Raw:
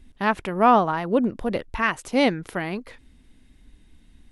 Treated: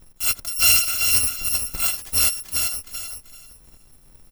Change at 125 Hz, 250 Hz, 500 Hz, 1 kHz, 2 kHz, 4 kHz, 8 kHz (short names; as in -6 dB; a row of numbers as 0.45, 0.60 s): -4.5, -22.0, -20.5, -16.0, 0.0, +12.5, +27.0 dB